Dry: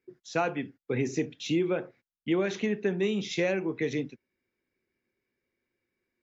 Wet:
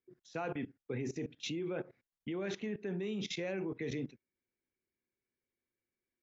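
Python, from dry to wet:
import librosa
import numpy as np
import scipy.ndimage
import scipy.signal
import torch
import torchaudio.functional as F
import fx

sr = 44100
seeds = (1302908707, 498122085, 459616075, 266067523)

y = fx.low_shelf(x, sr, hz=130.0, db=4.0)
y = fx.level_steps(y, sr, step_db=19)
y = fx.high_shelf(y, sr, hz=4400.0, db=-5.5)
y = y * 10.0 ** (1.0 / 20.0)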